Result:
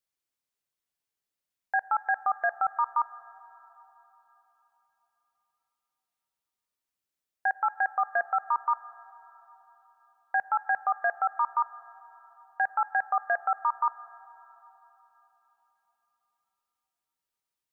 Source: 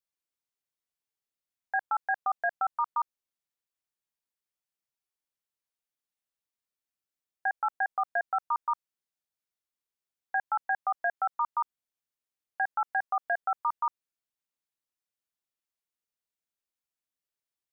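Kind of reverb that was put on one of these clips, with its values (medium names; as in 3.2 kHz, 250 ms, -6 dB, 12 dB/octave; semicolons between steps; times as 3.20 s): plate-style reverb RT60 3.9 s, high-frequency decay 0.8×, DRR 17 dB; trim +2.5 dB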